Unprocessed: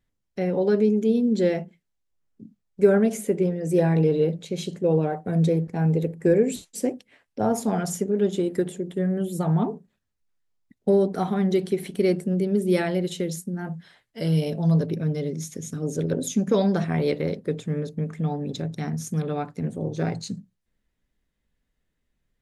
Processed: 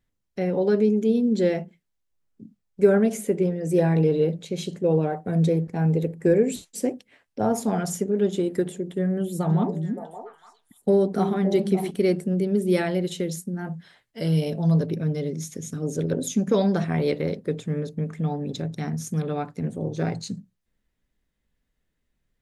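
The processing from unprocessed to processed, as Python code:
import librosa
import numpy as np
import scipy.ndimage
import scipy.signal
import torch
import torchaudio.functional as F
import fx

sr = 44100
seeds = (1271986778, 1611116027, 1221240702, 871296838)

y = fx.echo_stepped(x, sr, ms=285, hz=240.0, octaves=1.4, feedback_pct=70, wet_db=-3.0, at=(9.49, 11.89), fade=0.02)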